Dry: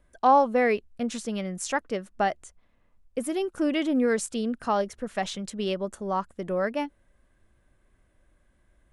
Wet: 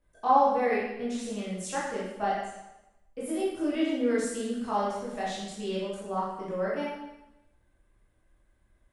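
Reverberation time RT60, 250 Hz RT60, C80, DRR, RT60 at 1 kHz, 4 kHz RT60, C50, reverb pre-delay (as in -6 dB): 0.95 s, 0.90 s, 3.0 dB, -8.0 dB, 0.95 s, 0.85 s, 0.0 dB, 7 ms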